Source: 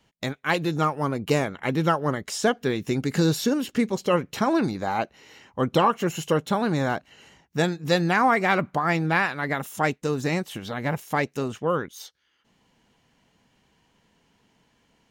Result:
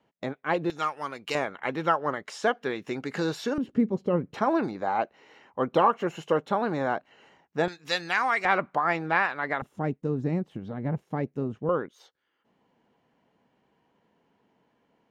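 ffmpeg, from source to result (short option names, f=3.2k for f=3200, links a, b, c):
-af "asetnsamples=n=441:p=0,asendcmd='0.7 bandpass f 2700;1.35 bandpass f 1100;3.58 bandpass f 210;4.34 bandpass f 750;7.68 bandpass f 2900;8.45 bandpass f 1000;9.62 bandpass f 180;11.69 bandpass f 520',bandpass=f=530:t=q:w=0.61:csg=0"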